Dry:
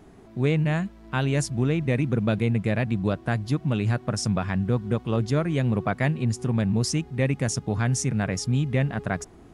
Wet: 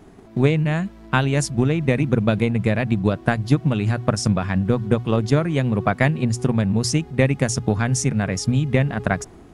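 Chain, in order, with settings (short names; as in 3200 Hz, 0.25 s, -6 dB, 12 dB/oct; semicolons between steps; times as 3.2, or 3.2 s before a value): transient shaper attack +8 dB, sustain +3 dB; notches 60/120 Hz; gain +2.5 dB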